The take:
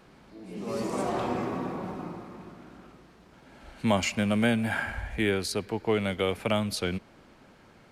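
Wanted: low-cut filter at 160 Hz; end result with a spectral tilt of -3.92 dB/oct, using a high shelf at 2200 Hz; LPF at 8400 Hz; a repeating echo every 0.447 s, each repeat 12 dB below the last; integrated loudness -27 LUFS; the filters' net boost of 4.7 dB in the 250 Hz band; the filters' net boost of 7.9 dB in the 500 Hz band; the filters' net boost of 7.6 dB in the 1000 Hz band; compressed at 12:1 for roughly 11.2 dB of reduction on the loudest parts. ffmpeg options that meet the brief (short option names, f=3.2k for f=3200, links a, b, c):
-af "highpass=160,lowpass=8.4k,equalizer=f=250:t=o:g=5,equalizer=f=500:t=o:g=6.5,equalizer=f=1k:t=o:g=5.5,highshelf=f=2.2k:g=9,acompressor=threshold=-24dB:ratio=12,aecho=1:1:447|894|1341:0.251|0.0628|0.0157,volume=2.5dB"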